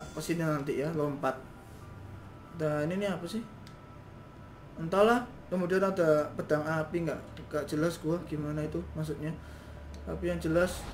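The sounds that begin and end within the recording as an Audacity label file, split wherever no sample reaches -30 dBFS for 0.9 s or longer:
2.610000	3.390000	sound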